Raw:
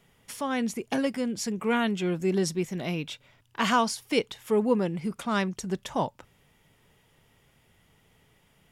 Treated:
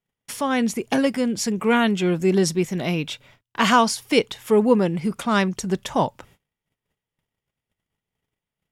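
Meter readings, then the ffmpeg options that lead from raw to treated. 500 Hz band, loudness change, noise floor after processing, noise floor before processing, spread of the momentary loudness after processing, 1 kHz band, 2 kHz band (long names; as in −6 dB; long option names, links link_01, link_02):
+7.0 dB, +7.0 dB, below −85 dBFS, −65 dBFS, 9 LU, +7.0 dB, +7.0 dB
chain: -af "agate=range=-31dB:threshold=-58dB:ratio=16:detection=peak,volume=7dB"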